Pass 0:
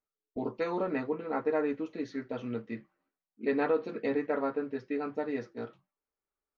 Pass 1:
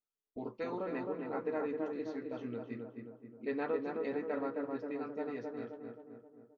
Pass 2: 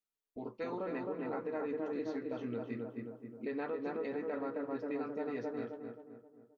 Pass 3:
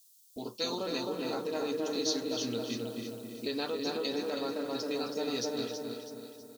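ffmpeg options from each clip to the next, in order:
ffmpeg -i in.wav -filter_complex "[0:a]asplit=2[link_01][link_02];[link_02]adelay=264,lowpass=frequency=1500:poles=1,volume=-3dB,asplit=2[link_03][link_04];[link_04]adelay=264,lowpass=frequency=1500:poles=1,volume=0.55,asplit=2[link_05][link_06];[link_06]adelay=264,lowpass=frequency=1500:poles=1,volume=0.55,asplit=2[link_07][link_08];[link_08]adelay=264,lowpass=frequency=1500:poles=1,volume=0.55,asplit=2[link_09][link_10];[link_10]adelay=264,lowpass=frequency=1500:poles=1,volume=0.55,asplit=2[link_11][link_12];[link_12]adelay=264,lowpass=frequency=1500:poles=1,volume=0.55,asplit=2[link_13][link_14];[link_14]adelay=264,lowpass=frequency=1500:poles=1,volume=0.55,asplit=2[link_15][link_16];[link_16]adelay=264,lowpass=frequency=1500:poles=1,volume=0.55[link_17];[link_01][link_03][link_05][link_07][link_09][link_11][link_13][link_15][link_17]amix=inputs=9:normalize=0,volume=-7.5dB" out.wav
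ffmpeg -i in.wav -af "dynaudnorm=framelen=220:gausssize=9:maxgain=6dB,alimiter=level_in=3dB:limit=-24dB:level=0:latency=1:release=164,volume=-3dB,volume=-2dB" out.wav
ffmpeg -i in.wav -filter_complex "[0:a]aexciter=amount=10.5:drive=9.5:freq=3300,asplit=2[link_01][link_02];[link_02]aecho=0:1:324|648|972|1296|1620:0.398|0.167|0.0702|0.0295|0.0124[link_03];[link_01][link_03]amix=inputs=2:normalize=0,volume=3dB" out.wav

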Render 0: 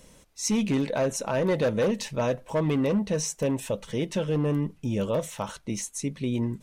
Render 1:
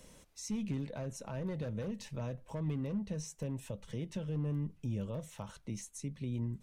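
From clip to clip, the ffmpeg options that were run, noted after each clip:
ffmpeg -i in.wav -filter_complex "[0:a]acrossover=split=170[link_01][link_02];[link_02]acompressor=threshold=-45dB:ratio=2.5[link_03];[link_01][link_03]amix=inputs=2:normalize=0,volume=-4dB" out.wav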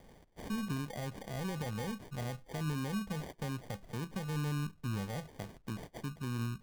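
ffmpeg -i in.wav -af "acrusher=samples=33:mix=1:aa=0.000001" out.wav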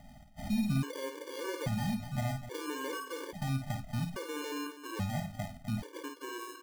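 ffmpeg -i in.wav -af "aecho=1:1:52.48|250.7:0.501|0.251,afftfilt=real='re*gt(sin(2*PI*0.6*pts/sr)*(1-2*mod(floor(b*sr/1024/300),2)),0)':imag='im*gt(sin(2*PI*0.6*pts/sr)*(1-2*mod(floor(b*sr/1024/300),2)),0)':win_size=1024:overlap=0.75,volume=5.5dB" out.wav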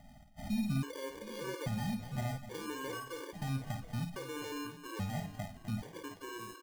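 ffmpeg -i in.wav -af "aecho=1:1:716:0.133,volume=-3dB" out.wav

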